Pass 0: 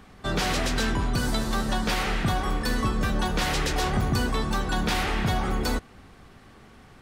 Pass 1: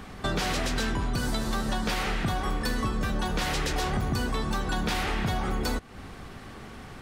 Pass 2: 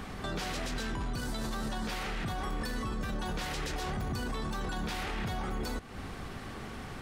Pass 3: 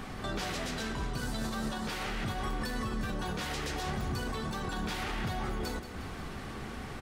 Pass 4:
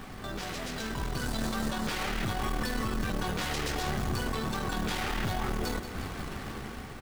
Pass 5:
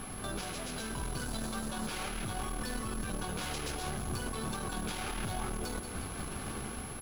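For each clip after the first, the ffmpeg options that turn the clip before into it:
ffmpeg -i in.wav -af "acompressor=threshold=-36dB:ratio=3,volume=7.5dB" out.wav
ffmpeg -i in.wav -af "alimiter=level_in=4.5dB:limit=-24dB:level=0:latency=1:release=23,volume=-4.5dB,volume=1dB" out.wav
ffmpeg -i in.wav -filter_complex "[0:a]flanger=delay=7.9:depth=6.9:regen=-58:speed=0.38:shape=sinusoidal,asplit=2[link_01][link_02];[link_02]aecho=0:1:180|360|540|720|900|1080|1260:0.266|0.16|0.0958|0.0575|0.0345|0.0207|0.0124[link_03];[link_01][link_03]amix=inputs=2:normalize=0,volume=4.5dB" out.wav
ffmpeg -i in.wav -af "dynaudnorm=framelen=380:gausssize=5:maxgain=6.5dB,aeval=exprs='(tanh(17.8*val(0)+0.55)-tanh(0.55))/17.8':channel_layout=same,acrusher=bits=4:mode=log:mix=0:aa=0.000001" out.wav
ffmpeg -i in.wav -af "bandreject=frequency=1900:width=8.4,alimiter=level_in=3.5dB:limit=-24dB:level=0:latency=1:release=355,volume=-3.5dB,aeval=exprs='val(0)+0.00501*sin(2*PI*11000*n/s)':channel_layout=same" out.wav

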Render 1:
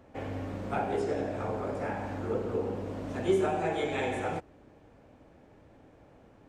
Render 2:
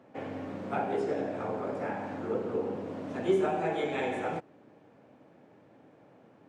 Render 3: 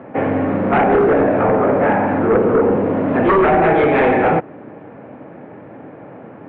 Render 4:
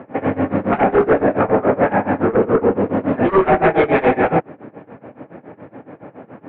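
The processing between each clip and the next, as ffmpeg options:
ffmpeg -i in.wav -af "highpass=frequency=130:width=0.5412,highpass=frequency=130:width=1.3066,highshelf=frequency=5800:gain=-9.5" out.wav
ffmpeg -i in.wav -af "aeval=exprs='0.168*sin(PI/2*3.55*val(0)/0.168)':channel_layout=same,lowpass=frequency=2300:width=0.5412,lowpass=frequency=2300:width=1.3066,volume=6.5dB" out.wav
ffmpeg -i in.wav -af "tremolo=f=7.1:d=0.91,volume=2.5dB" out.wav

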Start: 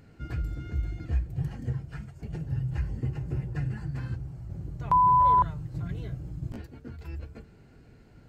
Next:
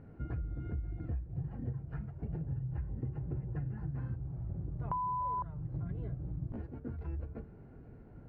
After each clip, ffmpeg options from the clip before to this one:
ffmpeg -i in.wav -af "lowpass=1100,acompressor=threshold=-36dB:ratio=6,volume=1.5dB" out.wav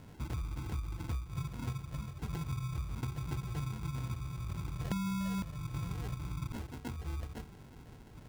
ffmpeg -i in.wav -af "acrusher=samples=37:mix=1:aa=0.000001" out.wav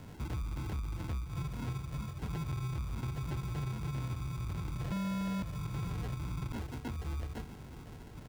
ffmpeg -i in.wav -filter_complex "[0:a]aecho=1:1:644:0.126,asoftclip=type=tanh:threshold=-35.5dB,acrossover=split=350|4600[link_01][link_02][link_03];[link_03]alimiter=level_in=24dB:limit=-24dB:level=0:latency=1,volume=-24dB[link_04];[link_01][link_02][link_04]amix=inputs=3:normalize=0,volume=4dB" out.wav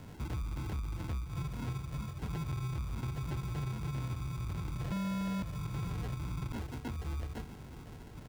ffmpeg -i in.wav -af anull out.wav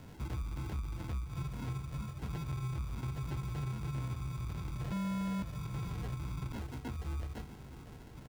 ffmpeg -i in.wav -filter_complex "[0:a]asplit=2[link_01][link_02];[link_02]adelay=15,volume=-11.5dB[link_03];[link_01][link_03]amix=inputs=2:normalize=0,volume=-2dB" out.wav

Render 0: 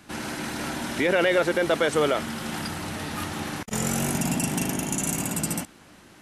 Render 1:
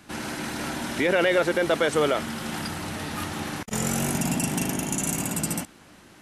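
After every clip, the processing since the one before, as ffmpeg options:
ffmpeg -i in.wav -af anull out.wav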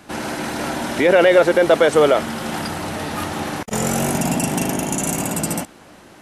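ffmpeg -i in.wav -af "equalizer=frequency=610:width=0.84:gain=6.5,volume=4dB" out.wav

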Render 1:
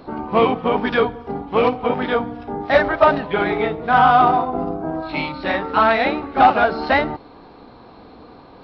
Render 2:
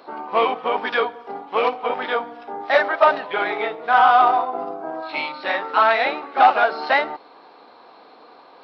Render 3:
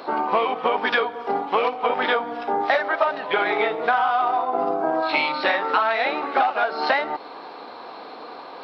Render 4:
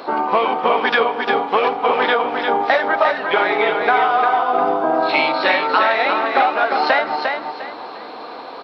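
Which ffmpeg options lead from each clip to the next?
ffmpeg -i in.wav -af "highpass=550" out.wav
ffmpeg -i in.wav -af "acompressor=threshold=-26dB:ratio=16,volume=9dB" out.wav
ffmpeg -i in.wav -af "aecho=1:1:352|704|1056|1408:0.562|0.163|0.0473|0.0137,volume=4dB" out.wav

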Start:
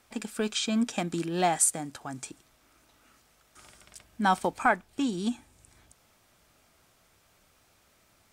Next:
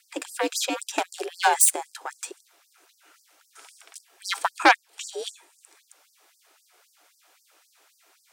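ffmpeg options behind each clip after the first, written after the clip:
ffmpeg -i in.wav -af "aeval=exprs='0.316*(cos(1*acos(clip(val(0)/0.316,-1,1)))-cos(1*PI/2))+0.0891*(cos(2*acos(clip(val(0)/0.316,-1,1)))-cos(2*PI/2))+0.112*(cos(6*acos(clip(val(0)/0.316,-1,1)))-cos(6*PI/2))+0.0447*(cos(8*acos(clip(val(0)/0.316,-1,1)))-cos(8*PI/2))':channel_layout=same,afreqshift=68,afftfilt=real='re*gte(b*sr/1024,260*pow(4600/260,0.5+0.5*sin(2*PI*3.8*pts/sr)))':imag='im*gte(b*sr/1024,260*pow(4600/260,0.5+0.5*sin(2*PI*3.8*pts/sr)))':win_size=1024:overlap=0.75,volume=5dB" out.wav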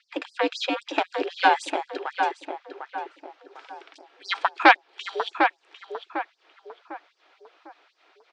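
ffmpeg -i in.wav -filter_complex "[0:a]lowpass=frequency=4000:width=0.5412,lowpass=frequency=4000:width=1.3066,asplit=2[link_01][link_02];[link_02]adelay=751,lowpass=frequency=1700:poles=1,volume=-4.5dB,asplit=2[link_03][link_04];[link_04]adelay=751,lowpass=frequency=1700:poles=1,volume=0.41,asplit=2[link_05][link_06];[link_06]adelay=751,lowpass=frequency=1700:poles=1,volume=0.41,asplit=2[link_07][link_08];[link_08]adelay=751,lowpass=frequency=1700:poles=1,volume=0.41,asplit=2[link_09][link_10];[link_10]adelay=751,lowpass=frequency=1700:poles=1,volume=0.41[link_11];[link_03][link_05][link_07][link_09][link_11]amix=inputs=5:normalize=0[link_12];[link_01][link_12]amix=inputs=2:normalize=0,volume=2dB" out.wav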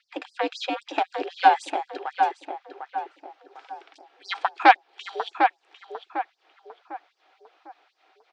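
ffmpeg -i in.wav -af "equalizer=frequency=770:width_type=o:width=0.21:gain=9,volume=-3.5dB" out.wav

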